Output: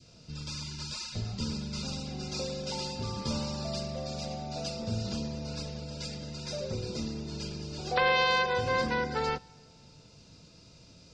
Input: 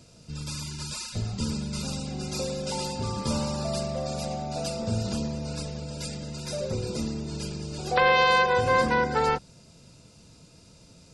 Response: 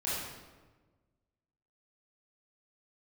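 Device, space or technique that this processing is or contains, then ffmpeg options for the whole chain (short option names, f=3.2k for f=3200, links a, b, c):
ducked reverb: -filter_complex "[0:a]adynamicequalizer=threshold=0.0158:dfrequency=930:dqfactor=0.72:tfrequency=930:tqfactor=0.72:attack=5:release=100:ratio=0.375:range=2:mode=cutabove:tftype=bell,lowpass=f=5.6k:w=0.5412,lowpass=f=5.6k:w=1.3066,aemphasis=mode=production:type=cd,asplit=3[a][b][c];[1:a]atrim=start_sample=2205[d];[b][d]afir=irnorm=-1:irlink=0[e];[c]apad=whole_len=491132[f];[e][f]sidechaincompress=threshold=-42dB:ratio=8:attack=16:release=639,volume=-10.5dB[g];[a][g]amix=inputs=2:normalize=0,volume=-4.5dB"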